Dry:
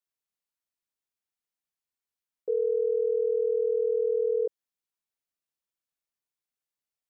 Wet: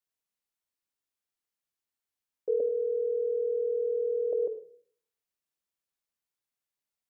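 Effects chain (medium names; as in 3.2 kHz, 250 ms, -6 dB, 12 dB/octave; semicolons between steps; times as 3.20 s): 2.60–4.33 s: elliptic band-pass 280–560 Hz; reverberation RT60 0.55 s, pre-delay 56 ms, DRR 10 dB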